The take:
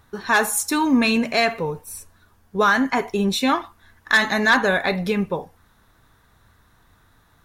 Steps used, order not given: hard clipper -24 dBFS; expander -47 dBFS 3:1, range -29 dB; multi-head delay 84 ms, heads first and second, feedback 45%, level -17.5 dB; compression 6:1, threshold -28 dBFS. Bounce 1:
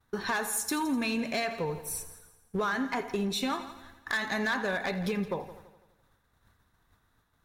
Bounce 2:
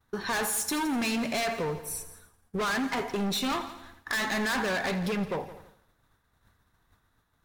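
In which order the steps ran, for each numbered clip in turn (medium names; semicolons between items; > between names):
expander > compression > hard clipper > multi-head delay; hard clipper > compression > multi-head delay > expander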